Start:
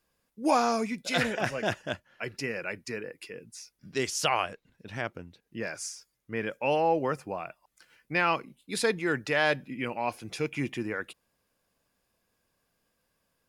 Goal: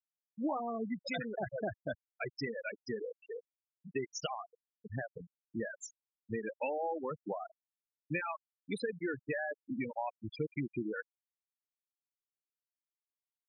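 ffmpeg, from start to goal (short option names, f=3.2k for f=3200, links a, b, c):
-af "acompressor=threshold=-33dB:ratio=16,afftfilt=real='re*gte(hypot(re,im),0.0447)':imag='im*gte(hypot(re,im),0.0447)':win_size=1024:overlap=0.75,volume=2dB"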